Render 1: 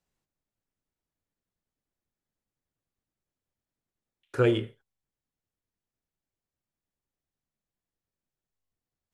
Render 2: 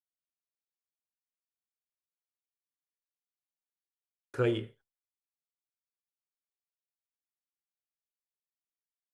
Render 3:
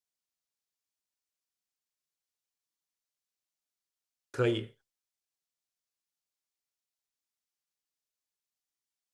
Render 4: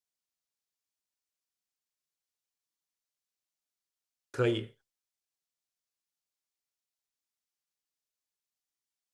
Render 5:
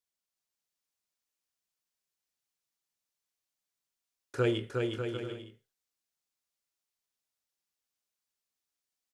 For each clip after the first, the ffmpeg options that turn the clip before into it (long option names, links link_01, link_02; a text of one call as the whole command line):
ffmpeg -i in.wav -af "agate=range=-33dB:threshold=-56dB:ratio=3:detection=peak,volume=-5.5dB" out.wav
ffmpeg -i in.wav -af "equalizer=frequency=5800:width_type=o:width=1.6:gain=7" out.wav
ffmpeg -i in.wav -af anull out.wav
ffmpeg -i in.wav -af "aecho=1:1:360|594|746.1|845|909.2:0.631|0.398|0.251|0.158|0.1" out.wav